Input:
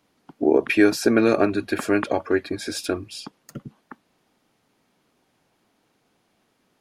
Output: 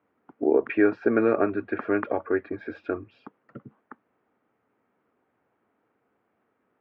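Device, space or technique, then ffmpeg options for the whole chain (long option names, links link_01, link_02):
bass cabinet: -af "highpass=83,equalizer=frequency=160:width_type=q:width=4:gain=-8,equalizer=frequency=450:width_type=q:width=4:gain=4,equalizer=frequency=1300:width_type=q:width=4:gain=4,lowpass=frequency=2100:width=0.5412,lowpass=frequency=2100:width=1.3066,volume=-5dB"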